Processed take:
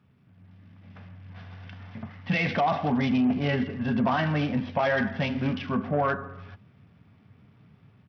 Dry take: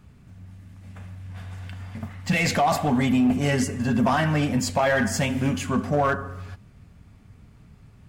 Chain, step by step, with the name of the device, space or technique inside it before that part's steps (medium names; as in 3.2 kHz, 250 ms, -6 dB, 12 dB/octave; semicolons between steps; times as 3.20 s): Bluetooth headset (high-pass 100 Hz 24 dB/octave; level rider gain up to 6 dB; resampled via 8 kHz; trim -9 dB; SBC 64 kbps 44.1 kHz)